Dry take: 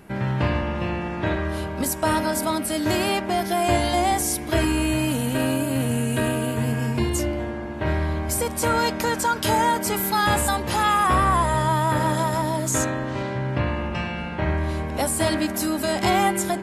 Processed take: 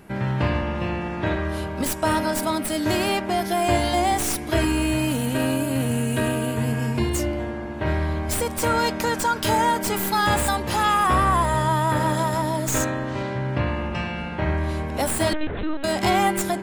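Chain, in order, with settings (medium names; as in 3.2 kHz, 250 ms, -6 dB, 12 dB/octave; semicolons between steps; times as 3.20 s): tracing distortion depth 0.04 ms; 15.33–15.84 s: LPC vocoder at 8 kHz pitch kept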